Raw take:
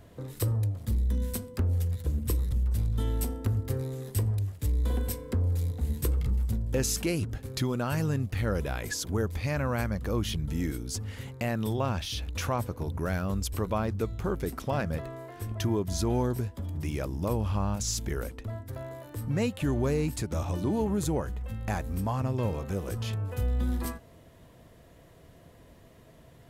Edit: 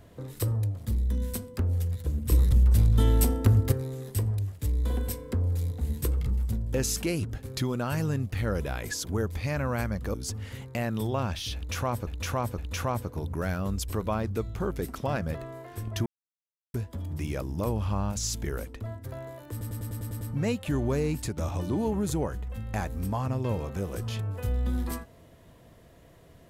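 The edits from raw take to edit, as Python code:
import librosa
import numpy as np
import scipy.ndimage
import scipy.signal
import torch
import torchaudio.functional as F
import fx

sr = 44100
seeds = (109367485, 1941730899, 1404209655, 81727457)

y = fx.edit(x, sr, fx.clip_gain(start_s=2.32, length_s=1.4, db=7.5),
    fx.cut(start_s=10.14, length_s=0.66),
    fx.repeat(start_s=12.22, length_s=0.51, count=3),
    fx.silence(start_s=15.7, length_s=0.68),
    fx.stutter(start_s=19.15, slice_s=0.1, count=8), tone=tone)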